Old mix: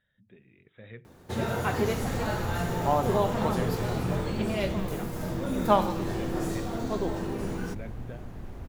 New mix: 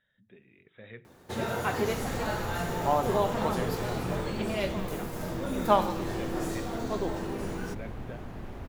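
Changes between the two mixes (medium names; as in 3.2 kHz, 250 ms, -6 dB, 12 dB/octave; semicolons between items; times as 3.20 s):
speech: send +10.5 dB; second sound +5.5 dB; master: add bass shelf 200 Hz -7.5 dB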